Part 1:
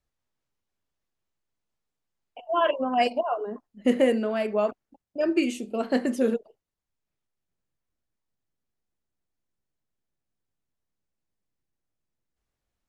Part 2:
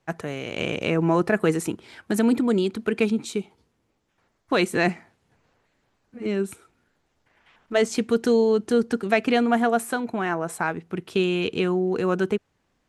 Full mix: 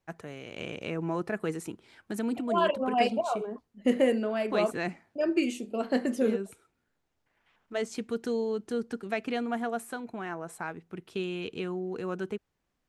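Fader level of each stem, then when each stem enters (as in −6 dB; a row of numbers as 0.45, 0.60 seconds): −3.0, −11.0 decibels; 0.00, 0.00 seconds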